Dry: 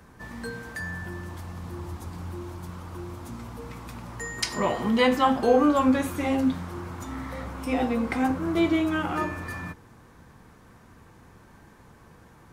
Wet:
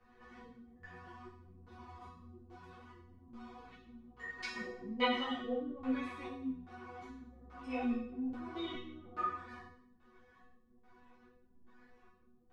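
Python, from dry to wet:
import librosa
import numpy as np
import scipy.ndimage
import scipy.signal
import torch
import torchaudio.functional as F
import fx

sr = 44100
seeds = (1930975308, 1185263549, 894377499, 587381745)

y = fx.filter_lfo_lowpass(x, sr, shape='square', hz=1.2, low_hz=290.0, high_hz=3300.0, q=0.84)
y = fx.hum_notches(y, sr, base_hz=50, count=7)
y = fx.resonator_bank(y, sr, root=59, chord='fifth', decay_s=0.67)
y = fx.ensemble(y, sr)
y = y * 10.0 ** (14.0 / 20.0)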